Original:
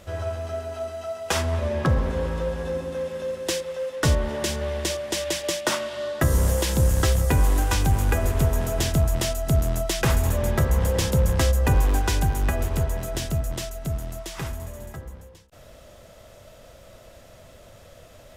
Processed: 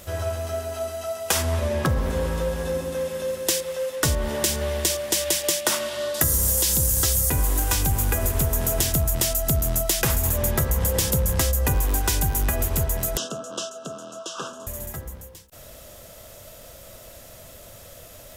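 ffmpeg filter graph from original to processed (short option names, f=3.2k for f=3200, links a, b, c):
-filter_complex "[0:a]asettb=1/sr,asplit=3[a][b][c];[a]atrim=end=6.144[d];[b]atrim=start=6.14:end=7.3,asetpts=PTS-STARTPTS,afade=t=in:d=0.004:c=qsin,afade=t=out:st=1.156:d=0.004:c=qsin,acrossover=split=5300[e][f];[f]acompressor=threshold=-39dB:ratio=4:attack=1:release=60[g];[e][g]amix=inputs=2:normalize=0,bass=f=250:g=1,treble=f=4k:g=14[h];[c]atrim=start=7.296[i];[d][h]acrossfade=d=0.004:c1=hsin:c2=qsin[j];[j][i]acrossfade=d=0.004:c1=qsin:c2=hsin,asettb=1/sr,asplit=3[k][l][m];[k]atrim=end=13.174[n];[l]atrim=start=13.17:end=14.67,asetpts=PTS-STARTPTS,afade=t=in:d=0.004:c=qsin,afade=t=out:st=1.496:d=0.004:c=qsin,asuperstop=centerf=2100:order=12:qfactor=1.9,highpass=f=220:w=0.5412,highpass=f=220:w=1.3066,equalizer=f=340:t=q:w=4:g=-4,equalizer=f=500:t=q:w=4:g=5,equalizer=f=830:t=q:w=4:g=-6,equalizer=f=1.2k:t=q:w=4:g=8,equalizer=f=2.3k:t=q:w=4:g=6,equalizer=f=4.4k:t=q:w=4:g=-8,lowpass=f=6.3k:w=0.5412,lowpass=f=6.3k:w=1.3066[o];[m]atrim=start=14.666[p];[n][o]acrossfade=d=0.004:c1=hsin:c2=qsin[q];[q][p]acrossfade=d=0.004:c1=qsin:c2=hsin,aemphasis=mode=production:type=50fm,acompressor=threshold=-20dB:ratio=6,volume=2dB"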